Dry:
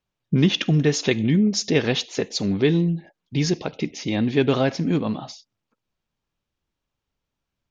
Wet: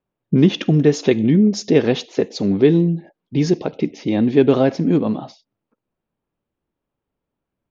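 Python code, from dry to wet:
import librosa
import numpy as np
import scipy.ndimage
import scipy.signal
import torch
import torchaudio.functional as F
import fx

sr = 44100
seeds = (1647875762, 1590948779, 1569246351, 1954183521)

y = fx.env_lowpass(x, sr, base_hz=2700.0, full_db=-17.5)
y = fx.peak_eq(y, sr, hz=360.0, db=11.0, octaves=3.0)
y = y * librosa.db_to_amplitude(-4.0)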